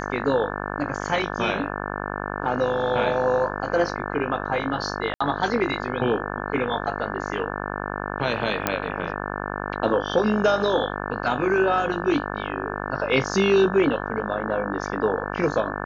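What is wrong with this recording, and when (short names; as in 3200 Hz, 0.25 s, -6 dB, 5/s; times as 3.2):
buzz 50 Hz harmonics 35 -30 dBFS
5.14–5.21 gap 65 ms
8.67 pop -5 dBFS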